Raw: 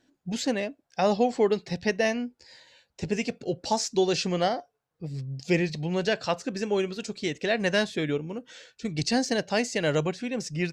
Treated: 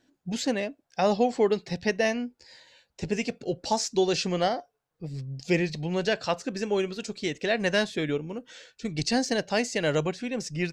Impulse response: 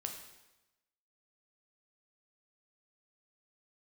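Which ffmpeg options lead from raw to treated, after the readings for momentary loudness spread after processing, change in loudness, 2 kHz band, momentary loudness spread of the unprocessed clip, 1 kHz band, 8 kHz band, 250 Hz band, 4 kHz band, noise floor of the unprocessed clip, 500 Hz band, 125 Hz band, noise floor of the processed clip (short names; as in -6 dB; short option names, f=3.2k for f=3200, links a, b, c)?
12 LU, 0.0 dB, 0.0 dB, 11 LU, 0.0 dB, 0.0 dB, -0.5 dB, 0.0 dB, -78 dBFS, 0.0 dB, -1.0 dB, -78 dBFS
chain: -af "asubboost=boost=2:cutoff=51"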